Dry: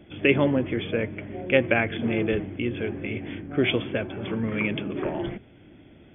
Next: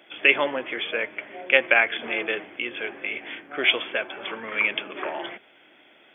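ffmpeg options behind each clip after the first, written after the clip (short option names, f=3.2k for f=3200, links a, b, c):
-af "highpass=840,volume=7dB"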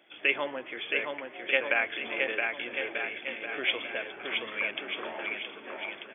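-af "aecho=1:1:670|1240|1724|2135|2485:0.631|0.398|0.251|0.158|0.1,volume=-8.5dB"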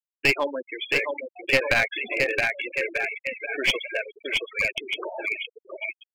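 -af "afftfilt=real='re*gte(hypot(re,im),0.0447)':imag='im*gte(hypot(re,im),0.0447)':win_size=1024:overlap=0.75,aeval=exprs='clip(val(0),-1,0.0473)':c=same,volume=7.5dB"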